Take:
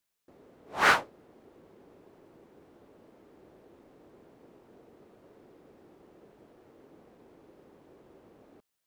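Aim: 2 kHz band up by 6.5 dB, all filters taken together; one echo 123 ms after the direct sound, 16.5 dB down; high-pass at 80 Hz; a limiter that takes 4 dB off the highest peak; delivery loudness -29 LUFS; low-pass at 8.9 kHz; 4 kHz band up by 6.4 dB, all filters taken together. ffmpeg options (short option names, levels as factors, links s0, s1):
-af "highpass=80,lowpass=8900,equalizer=f=2000:t=o:g=7.5,equalizer=f=4000:t=o:g=5.5,alimiter=limit=0.473:level=0:latency=1,aecho=1:1:123:0.15,volume=0.473"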